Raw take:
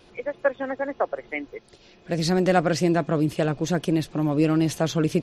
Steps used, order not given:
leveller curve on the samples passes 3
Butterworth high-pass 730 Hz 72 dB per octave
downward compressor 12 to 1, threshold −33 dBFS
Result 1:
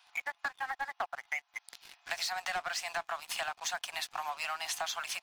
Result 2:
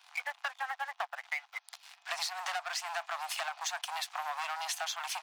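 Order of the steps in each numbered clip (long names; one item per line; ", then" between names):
Butterworth high-pass, then leveller curve on the samples, then downward compressor
leveller curve on the samples, then Butterworth high-pass, then downward compressor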